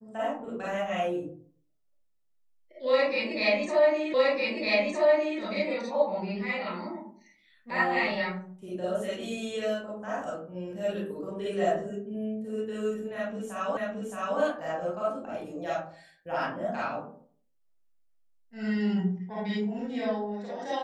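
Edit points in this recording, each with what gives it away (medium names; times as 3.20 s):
4.14 s: repeat of the last 1.26 s
13.77 s: repeat of the last 0.62 s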